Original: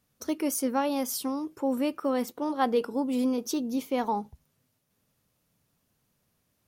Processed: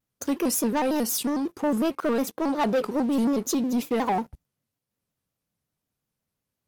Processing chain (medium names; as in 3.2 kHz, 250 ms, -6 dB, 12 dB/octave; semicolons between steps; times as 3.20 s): waveshaping leveller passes 3; vibrato with a chosen wave square 5.5 Hz, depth 160 cents; trim -4.5 dB